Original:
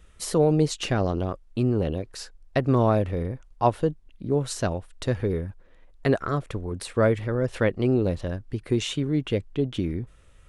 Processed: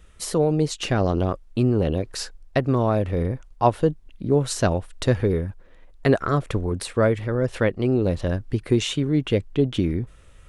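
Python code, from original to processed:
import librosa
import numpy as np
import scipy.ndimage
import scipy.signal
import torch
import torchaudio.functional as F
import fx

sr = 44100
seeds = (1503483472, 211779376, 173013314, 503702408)

y = fx.rider(x, sr, range_db=5, speed_s=0.5)
y = y * 10.0 ** (3.0 / 20.0)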